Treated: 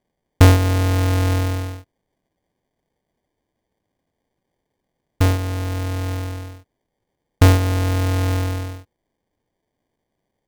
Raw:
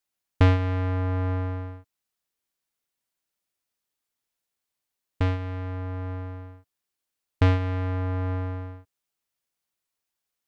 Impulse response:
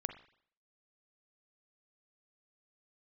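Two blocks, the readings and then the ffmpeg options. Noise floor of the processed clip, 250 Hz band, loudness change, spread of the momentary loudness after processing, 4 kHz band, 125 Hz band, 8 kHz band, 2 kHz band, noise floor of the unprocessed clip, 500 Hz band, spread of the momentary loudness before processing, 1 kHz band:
-78 dBFS, +8.0 dB, +8.0 dB, 15 LU, +13.0 dB, +8.0 dB, no reading, +8.5 dB, -85 dBFS, +7.5 dB, 15 LU, +7.5 dB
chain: -af "acrusher=samples=33:mix=1:aa=0.000001,volume=2.51"

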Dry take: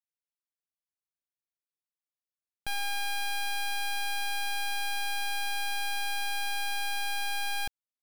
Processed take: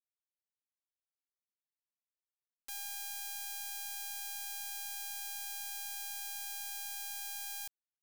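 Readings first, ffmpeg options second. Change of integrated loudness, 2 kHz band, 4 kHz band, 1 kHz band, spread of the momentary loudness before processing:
-7.5 dB, -16.0 dB, -11.0 dB, -17.0 dB, 1 LU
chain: -af "agate=range=0.0224:threshold=0.112:ratio=3:detection=peak,firequalizer=gain_entry='entry(150,0);entry(220,1);entry(530,-6);entry(880,-22);entry(1600,11);entry(3100,4);entry(4500,1);entry(7300,6);entry(14000,-13)':delay=0.05:min_phase=1,acrusher=bits=5:dc=4:mix=0:aa=0.000001,volume=7.08"

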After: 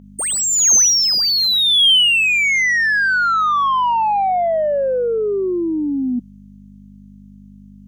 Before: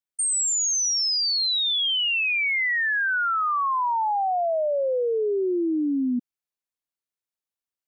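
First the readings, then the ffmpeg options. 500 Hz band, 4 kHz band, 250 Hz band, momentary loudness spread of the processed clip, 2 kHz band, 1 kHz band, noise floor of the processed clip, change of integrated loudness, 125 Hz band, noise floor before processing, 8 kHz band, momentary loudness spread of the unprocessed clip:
+5.5 dB, +9.5 dB, +4.0 dB, 11 LU, +8.0 dB, +7.5 dB, -42 dBFS, +8.0 dB, no reading, under -85 dBFS, +9.5 dB, 4 LU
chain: -filter_complex "[0:a]adynamicequalizer=threshold=0.0112:dfrequency=4700:dqfactor=0.81:tfrequency=4700:tqfactor=0.81:attack=5:release=100:ratio=0.375:range=2.5:mode=boostabove:tftype=bell,aeval=exprs='val(0)+0.00891*(sin(2*PI*50*n/s)+sin(2*PI*2*50*n/s)/2+sin(2*PI*3*50*n/s)/3+sin(2*PI*4*50*n/s)/4+sin(2*PI*5*50*n/s)/5)':c=same,crystalizer=i=3:c=0,asplit=2[s0][s1];[s1]highpass=f=720:p=1,volume=6.31,asoftclip=type=tanh:threshold=0.422[s2];[s0][s2]amix=inputs=2:normalize=0,lowpass=f=1800:p=1,volume=0.501,equalizer=f=200:t=o:w=0.33:g=11,equalizer=f=3150:t=o:w=0.33:g=6,equalizer=f=6300:t=o:w=0.33:g=9"

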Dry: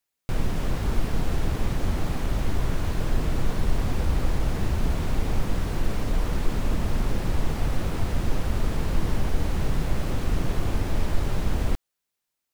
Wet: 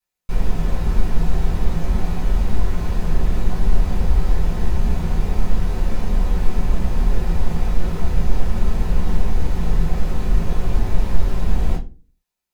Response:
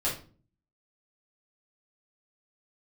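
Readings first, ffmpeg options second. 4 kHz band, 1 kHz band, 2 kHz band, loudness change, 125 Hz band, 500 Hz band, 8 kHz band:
-1.0 dB, +2.5 dB, 0.0 dB, +5.0 dB, +4.0 dB, +2.0 dB, -1.5 dB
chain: -filter_complex "[1:a]atrim=start_sample=2205,asetrate=61740,aresample=44100[s0];[0:a][s0]afir=irnorm=-1:irlink=0,volume=0.596"

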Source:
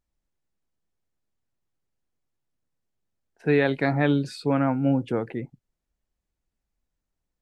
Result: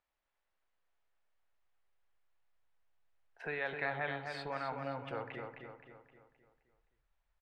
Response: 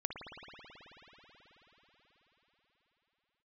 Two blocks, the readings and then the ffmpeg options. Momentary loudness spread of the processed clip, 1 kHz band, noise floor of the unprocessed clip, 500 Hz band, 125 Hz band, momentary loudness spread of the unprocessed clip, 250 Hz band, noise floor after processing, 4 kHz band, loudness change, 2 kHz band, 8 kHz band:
16 LU, -9.0 dB, -83 dBFS, -15.5 dB, -21.0 dB, 12 LU, -25.5 dB, under -85 dBFS, -11.0 dB, -15.5 dB, -8.0 dB, no reading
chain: -filter_complex "[0:a]acompressor=threshold=0.0141:ratio=3,acrossover=split=550 3500:gain=0.0891 1 0.126[s0][s1][s2];[s0][s1][s2]amix=inputs=3:normalize=0,asplit=2[s3][s4];[1:a]atrim=start_sample=2205,atrim=end_sample=6174[s5];[s4][s5]afir=irnorm=-1:irlink=0,volume=0.631[s6];[s3][s6]amix=inputs=2:normalize=0,asubboost=boost=6.5:cutoff=100,asplit=2[s7][s8];[s8]adelay=261,lowpass=f=4700:p=1,volume=0.562,asplit=2[s9][s10];[s10]adelay=261,lowpass=f=4700:p=1,volume=0.48,asplit=2[s11][s12];[s12]adelay=261,lowpass=f=4700:p=1,volume=0.48,asplit=2[s13][s14];[s14]adelay=261,lowpass=f=4700:p=1,volume=0.48,asplit=2[s15][s16];[s16]adelay=261,lowpass=f=4700:p=1,volume=0.48,asplit=2[s17][s18];[s18]adelay=261,lowpass=f=4700:p=1,volume=0.48[s19];[s7][s9][s11][s13][s15][s17][s19]amix=inputs=7:normalize=0,volume=1.19"

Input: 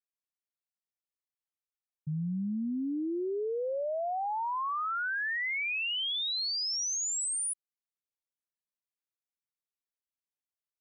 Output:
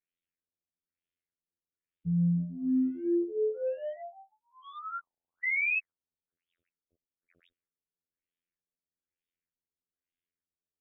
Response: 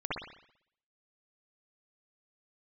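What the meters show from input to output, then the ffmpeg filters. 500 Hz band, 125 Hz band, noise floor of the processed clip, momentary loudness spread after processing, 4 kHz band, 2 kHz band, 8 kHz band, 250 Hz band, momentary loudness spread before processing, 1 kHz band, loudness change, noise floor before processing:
+0.5 dB, +6.0 dB, under -85 dBFS, 15 LU, under -30 dB, -0.5 dB, under -40 dB, +4.0 dB, 4 LU, -12.0 dB, +1.0 dB, under -85 dBFS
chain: -filter_complex "[0:a]asplit=2[s0][s1];[s1]asoftclip=type=tanh:threshold=0.0106,volume=0.335[s2];[s0][s2]amix=inputs=2:normalize=0,asuperstop=centerf=910:order=4:qfactor=0.75,afftfilt=real='hypot(re,im)*cos(PI*b)':imag='0':win_size=2048:overlap=0.75,afftfilt=real='re*lt(b*sr/1024,830*pow(3800/830,0.5+0.5*sin(2*PI*1.1*pts/sr)))':imag='im*lt(b*sr/1024,830*pow(3800/830,0.5+0.5*sin(2*PI*1.1*pts/sr)))':win_size=1024:overlap=0.75,volume=2.24"

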